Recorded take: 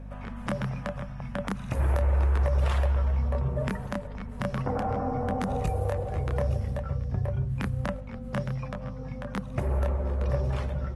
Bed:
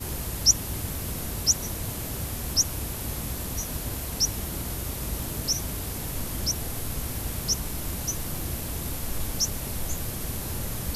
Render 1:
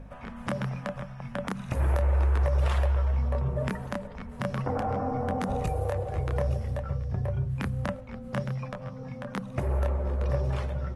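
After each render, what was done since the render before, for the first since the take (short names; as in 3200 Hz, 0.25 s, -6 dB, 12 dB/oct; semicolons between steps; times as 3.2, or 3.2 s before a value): de-hum 50 Hz, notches 5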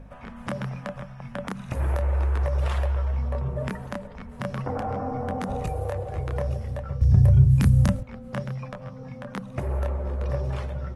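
7.01–8.03 tone controls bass +15 dB, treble +15 dB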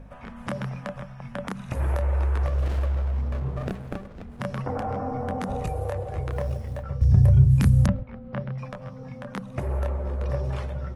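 2.46–4.4 running maximum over 33 samples; 6.31–6.83 G.711 law mismatch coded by A; 7.86–8.58 air absorption 310 m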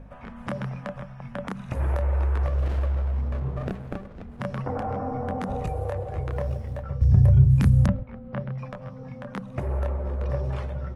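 high shelf 4000 Hz -7 dB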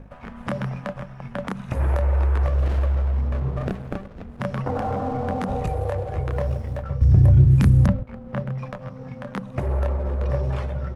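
sample leveller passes 1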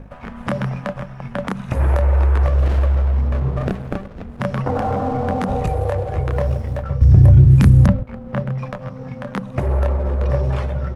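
gain +5 dB; limiter -2 dBFS, peak gain reduction 1.5 dB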